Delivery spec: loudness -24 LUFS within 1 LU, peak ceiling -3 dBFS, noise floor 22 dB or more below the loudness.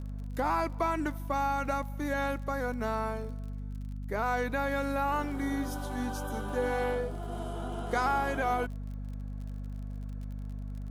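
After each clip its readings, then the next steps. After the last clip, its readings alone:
ticks 43/s; hum 50 Hz; harmonics up to 250 Hz; hum level -35 dBFS; loudness -33.0 LUFS; peak -16.0 dBFS; loudness target -24.0 LUFS
-> de-click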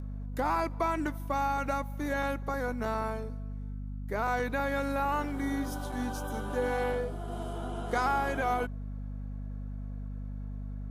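ticks 0.092/s; hum 50 Hz; harmonics up to 250 Hz; hum level -35 dBFS
-> notches 50/100/150/200/250 Hz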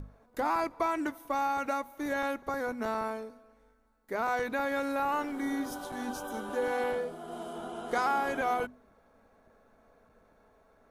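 hum none; loudness -33.0 LUFS; peak -17.5 dBFS; loudness target -24.0 LUFS
-> gain +9 dB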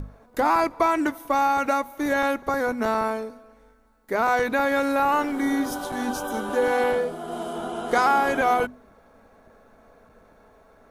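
loudness -24.0 LUFS; peak -8.5 dBFS; noise floor -55 dBFS

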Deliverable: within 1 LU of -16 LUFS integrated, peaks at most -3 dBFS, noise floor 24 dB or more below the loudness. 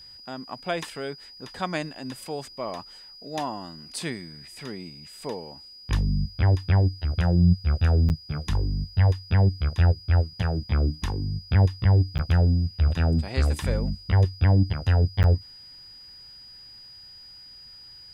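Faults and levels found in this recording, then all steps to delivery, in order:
dropouts 3; longest dropout 9.4 ms; steady tone 4900 Hz; tone level -44 dBFS; loudness -24.5 LUFS; peak -9.0 dBFS; loudness target -16.0 LUFS
-> interpolate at 8.09/12.18/15.23, 9.4 ms; notch 4900 Hz, Q 30; gain +8.5 dB; limiter -3 dBFS

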